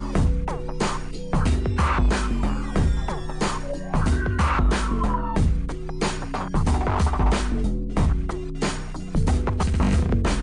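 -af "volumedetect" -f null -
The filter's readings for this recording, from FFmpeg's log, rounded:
mean_volume: -21.9 dB
max_volume: -10.3 dB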